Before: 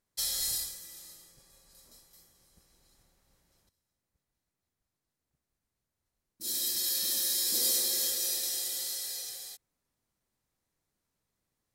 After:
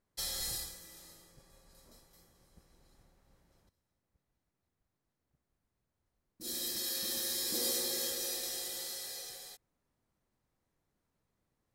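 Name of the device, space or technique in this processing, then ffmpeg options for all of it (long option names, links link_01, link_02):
through cloth: -af "highshelf=frequency=2500:gain=-11.5,volume=4dB"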